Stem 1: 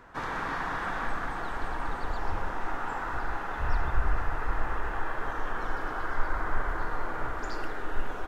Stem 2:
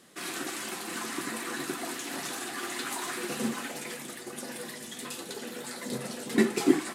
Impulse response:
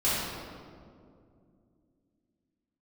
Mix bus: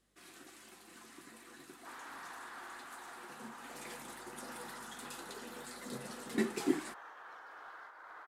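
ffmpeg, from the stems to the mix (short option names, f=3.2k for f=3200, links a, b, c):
-filter_complex "[0:a]acompressor=threshold=-25dB:ratio=4,highpass=660,asoftclip=type=tanh:threshold=-28.5dB,adelay=1700,volume=-13.5dB[a];[1:a]aeval=exprs='val(0)+0.000891*(sin(2*PI*50*n/s)+sin(2*PI*2*50*n/s)/2+sin(2*PI*3*50*n/s)/3+sin(2*PI*4*50*n/s)/4+sin(2*PI*5*50*n/s)/5)':c=same,volume=-9.5dB,afade=t=in:st=3.57:d=0.27:silence=0.298538[b];[a][b]amix=inputs=2:normalize=0"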